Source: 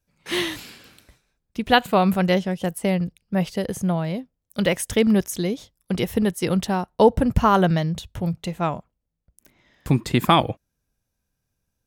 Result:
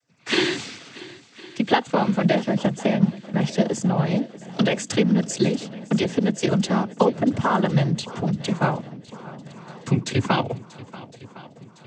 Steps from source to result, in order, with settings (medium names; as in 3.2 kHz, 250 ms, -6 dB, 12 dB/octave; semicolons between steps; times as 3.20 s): compression 10:1, threshold -22 dBFS, peak gain reduction 13.5 dB; noise-vocoded speech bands 16; on a send: shuffle delay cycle 1059 ms, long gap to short 1.5:1, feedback 55%, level -19 dB; on the sum: trim +6.5 dB